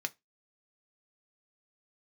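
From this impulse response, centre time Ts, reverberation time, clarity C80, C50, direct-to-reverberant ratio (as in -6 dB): 2 ms, 0.20 s, 36.5 dB, 27.5 dB, 6.5 dB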